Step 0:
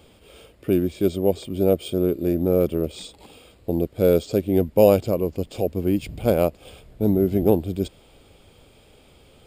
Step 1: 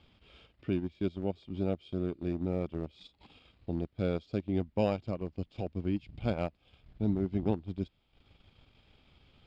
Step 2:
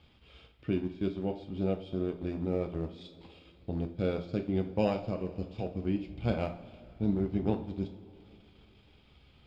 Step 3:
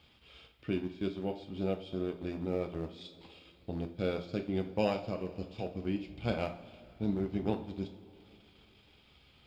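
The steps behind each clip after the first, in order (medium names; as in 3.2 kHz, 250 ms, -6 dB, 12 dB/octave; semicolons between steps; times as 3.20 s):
low-pass 4.7 kHz 24 dB/octave; transient shaper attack +2 dB, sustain -11 dB; peaking EQ 480 Hz -11 dB 1.1 oct; trim -7.5 dB
two-slope reverb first 0.39 s, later 3 s, from -18 dB, DRR 4 dB
tilt EQ +1.5 dB/octave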